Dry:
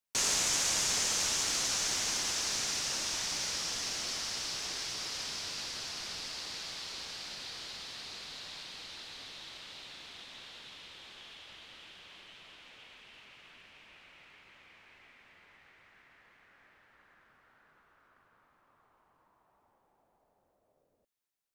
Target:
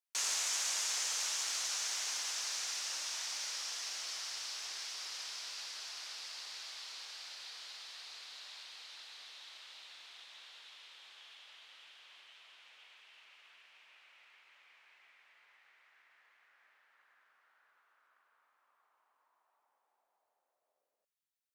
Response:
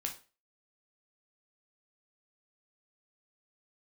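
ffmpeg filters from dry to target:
-af "highpass=790,volume=-5dB"

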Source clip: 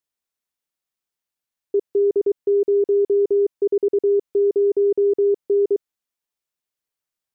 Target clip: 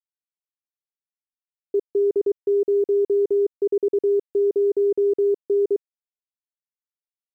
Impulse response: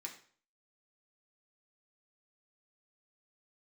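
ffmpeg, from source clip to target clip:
-af "acrusher=bits=9:mix=0:aa=0.000001,volume=-2dB"

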